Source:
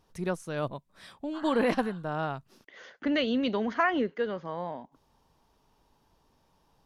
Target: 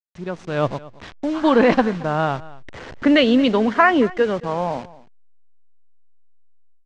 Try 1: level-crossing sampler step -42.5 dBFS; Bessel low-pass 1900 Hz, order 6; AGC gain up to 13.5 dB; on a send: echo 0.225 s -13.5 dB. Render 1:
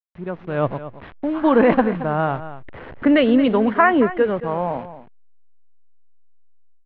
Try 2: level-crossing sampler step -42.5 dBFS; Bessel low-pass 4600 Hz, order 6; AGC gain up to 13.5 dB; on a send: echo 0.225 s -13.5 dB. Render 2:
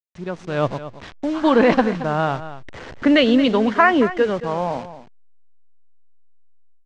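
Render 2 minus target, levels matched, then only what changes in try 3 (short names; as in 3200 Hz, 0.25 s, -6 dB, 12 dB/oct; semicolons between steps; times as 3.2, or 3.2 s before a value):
echo-to-direct +6.5 dB
change: echo 0.225 s -20 dB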